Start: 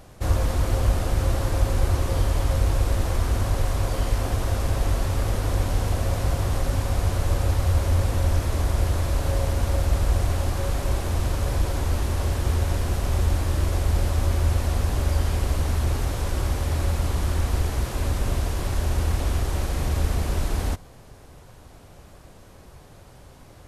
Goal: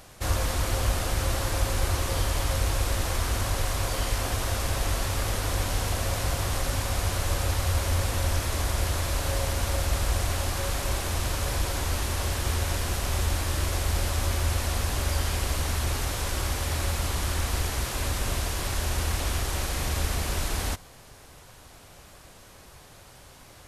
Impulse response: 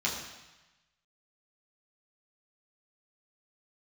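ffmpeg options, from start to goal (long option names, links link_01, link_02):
-af "tiltshelf=frequency=940:gain=-5.5"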